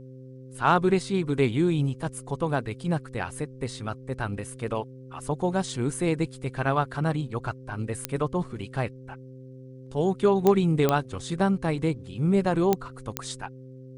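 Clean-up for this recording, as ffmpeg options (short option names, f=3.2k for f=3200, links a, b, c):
-af "adeclick=t=4,bandreject=f=130:t=h:w=4,bandreject=f=260:t=h:w=4,bandreject=f=390:t=h:w=4,bandreject=f=520:t=h:w=4"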